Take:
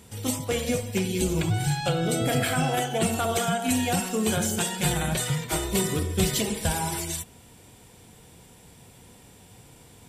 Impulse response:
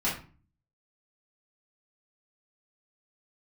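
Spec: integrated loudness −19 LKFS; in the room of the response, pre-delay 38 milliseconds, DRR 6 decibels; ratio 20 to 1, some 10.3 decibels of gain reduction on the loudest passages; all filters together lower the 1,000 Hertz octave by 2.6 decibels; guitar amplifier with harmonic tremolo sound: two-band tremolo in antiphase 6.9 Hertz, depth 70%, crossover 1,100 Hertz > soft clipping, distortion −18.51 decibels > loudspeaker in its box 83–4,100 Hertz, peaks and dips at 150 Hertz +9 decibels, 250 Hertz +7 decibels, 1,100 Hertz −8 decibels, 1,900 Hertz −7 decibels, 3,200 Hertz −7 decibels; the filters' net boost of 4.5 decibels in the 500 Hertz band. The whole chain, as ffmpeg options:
-filter_complex "[0:a]equalizer=frequency=500:width_type=o:gain=7,equalizer=frequency=1000:width_type=o:gain=-7,acompressor=threshold=-28dB:ratio=20,asplit=2[link_01][link_02];[1:a]atrim=start_sample=2205,adelay=38[link_03];[link_02][link_03]afir=irnorm=-1:irlink=0,volume=-15dB[link_04];[link_01][link_04]amix=inputs=2:normalize=0,acrossover=split=1100[link_05][link_06];[link_05]aeval=exprs='val(0)*(1-0.7/2+0.7/2*cos(2*PI*6.9*n/s))':channel_layout=same[link_07];[link_06]aeval=exprs='val(0)*(1-0.7/2-0.7/2*cos(2*PI*6.9*n/s))':channel_layout=same[link_08];[link_07][link_08]amix=inputs=2:normalize=0,asoftclip=threshold=-26dB,highpass=83,equalizer=frequency=150:width_type=q:width=4:gain=9,equalizer=frequency=250:width_type=q:width=4:gain=7,equalizer=frequency=1100:width_type=q:width=4:gain=-8,equalizer=frequency=1900:width_type=q:width=4:gain=-7,equalizer=frequency=3200:width_type=q:width=4:gain=-7,lowpass=frequency=4100:width=0.5412,lowpass=frequency=4100:width=1.3066,volume=14.5dB"

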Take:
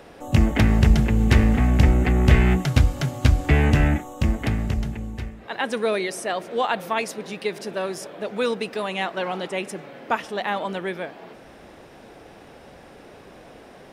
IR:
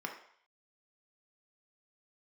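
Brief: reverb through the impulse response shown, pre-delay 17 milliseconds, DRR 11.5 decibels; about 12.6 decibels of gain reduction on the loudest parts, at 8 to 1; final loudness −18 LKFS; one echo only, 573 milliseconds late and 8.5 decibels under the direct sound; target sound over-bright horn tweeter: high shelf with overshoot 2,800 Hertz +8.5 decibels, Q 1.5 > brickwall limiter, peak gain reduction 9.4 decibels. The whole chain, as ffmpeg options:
-filter_complex "[0:a]acompressor=threshold=-24dB:ratio=8,aecho=1:1:573:0.376,asplit=2[link_01][link_02];[1:a]atrim=start_sample=2205,adelay=17[link_03];[link_02][link_03]afir=irnorm=-1:irlink=0,volume=-13.5dB[link_04];[link_01][link_04]amix=inputs=2:normalize=0,highshelf=frequency=2800:width_type=q:width=1.5:gain=8.5,volume=13.5dB,alimiter=limit=-7.5dB:level=0:latency=1"

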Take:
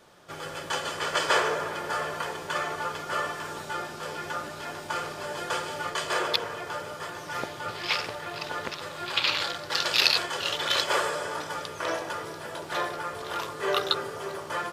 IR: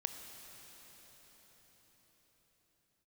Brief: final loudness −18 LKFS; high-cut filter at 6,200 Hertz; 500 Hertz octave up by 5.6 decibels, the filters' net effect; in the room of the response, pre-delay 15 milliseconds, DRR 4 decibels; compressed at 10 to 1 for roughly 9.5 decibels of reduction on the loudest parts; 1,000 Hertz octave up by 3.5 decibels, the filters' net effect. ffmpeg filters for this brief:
-filter_complex "[0:a]lowpass=6200,equalizer=frequency=500:width_type=o:gain=6,equalizer=frequency=1000:width_type=o:gain=3,acompressor=threshold=-25dB:ratio=10,asplit=2[link_01][link_02];[1:a]atrim=start_sample=2205,adelay=15[link_03];[link_02][link_03]afir=irnorm=-1:irlink=0,volume=-3.5dB[link_04];[link_01][link_04]amix=inputs=2:normalize=0,volume=11dB"

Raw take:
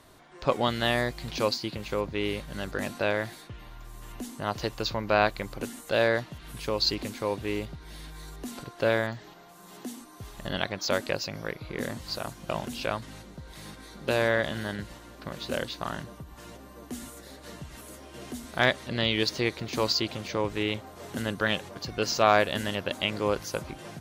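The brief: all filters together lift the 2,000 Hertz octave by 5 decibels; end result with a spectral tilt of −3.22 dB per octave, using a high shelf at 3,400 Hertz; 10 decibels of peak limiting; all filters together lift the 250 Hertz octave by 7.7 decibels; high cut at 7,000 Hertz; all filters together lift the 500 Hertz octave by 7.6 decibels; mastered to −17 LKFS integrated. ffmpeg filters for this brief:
ffmpeg -i in.wav -af "lowpass=7000,equalizer=frequency=250:width_type=o:gain=7.5,equalizer=frequency=500:width_type=o:gain=7,equalizer=frequency=2000:width_type=o:gain=4.5,highshelf=frequency=3400:gain=4.5,volume=9.5dB,alimiter=limit=-2.5dB:level=0:latency=1" out.wav

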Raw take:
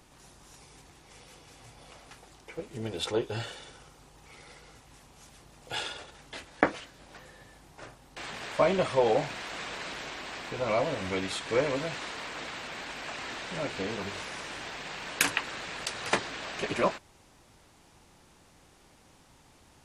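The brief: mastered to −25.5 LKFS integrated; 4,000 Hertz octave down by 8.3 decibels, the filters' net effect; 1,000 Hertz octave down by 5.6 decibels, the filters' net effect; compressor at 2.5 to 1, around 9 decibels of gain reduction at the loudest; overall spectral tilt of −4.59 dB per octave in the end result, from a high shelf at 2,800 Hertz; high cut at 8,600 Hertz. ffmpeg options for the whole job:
ffmpeg -i in.wav -af "lowpass=8600,equalizer=frequency=1000:width_type=o:gain=-6.5,highshelf=frequency=2800:gain=-5.5,equalizer=frequency=4000:width_type=o:gain=-6,acompressor=threshold=-38dB:ratio=2.5,volume=16dB" out.wav

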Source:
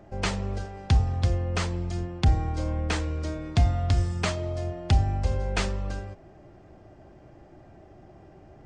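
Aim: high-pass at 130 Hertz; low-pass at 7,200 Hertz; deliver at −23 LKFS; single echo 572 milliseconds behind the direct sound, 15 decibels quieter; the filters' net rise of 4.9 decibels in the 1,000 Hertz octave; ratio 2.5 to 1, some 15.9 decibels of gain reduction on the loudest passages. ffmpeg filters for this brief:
ffmpeg -i in.wav -af "highpass=130,lowpass=7200,equalizer=frequency=1000:width_type=o:gain=7,acompressor=threshold=-46dB:ratio=2.5,aecho=1:1:572:0.178,volume=21.5dB" out.wav

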